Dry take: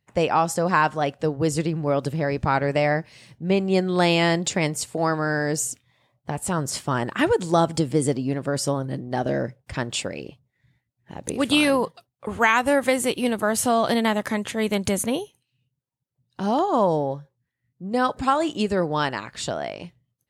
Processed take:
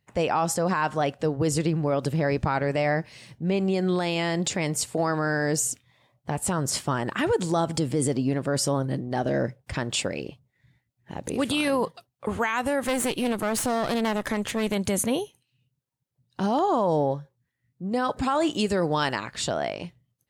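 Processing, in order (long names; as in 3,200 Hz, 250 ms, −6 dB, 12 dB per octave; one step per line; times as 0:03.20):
0:12.80–0:14.73: asymmetric clip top −30 dBFS, bottom −11.5 dBFS
brickwall limiter −16.5 dBFS, peak gain reduction 11 dB
0:18.53–0:19.16: high-shelf EQ 3,700 Hz +7 dB
level +1.5 dB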